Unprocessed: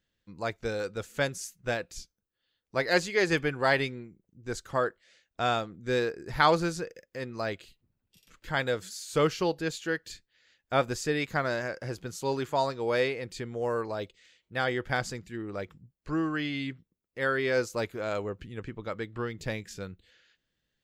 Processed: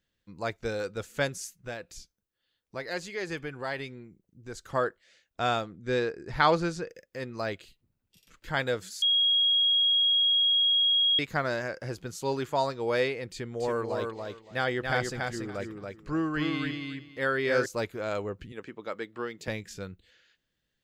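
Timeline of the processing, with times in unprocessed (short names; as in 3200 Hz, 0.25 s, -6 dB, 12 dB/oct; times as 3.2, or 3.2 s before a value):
1.58–4.64 compressor 1.5:1, threshold -46 dBFS
5.72–6.89 air absorption 51 m
9.02–11.19 bleep 3290 Hz -20.5 dBFS
13.3–17.66 feedback echo 0.282 s, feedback 19%, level -4 dB
18.52–19.48 HPF 260 Hz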